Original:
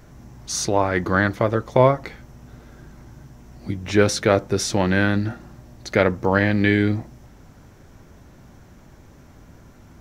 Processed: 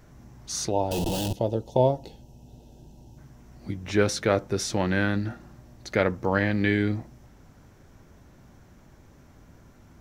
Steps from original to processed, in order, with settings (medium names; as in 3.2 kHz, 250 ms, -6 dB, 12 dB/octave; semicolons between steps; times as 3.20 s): 0.91–1.33 s: Schmitt trigger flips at -32.5 dBFS; 0.71–3.18 s: time-frequency box 980–2500 Hz -21 dB; trim -5.5 dB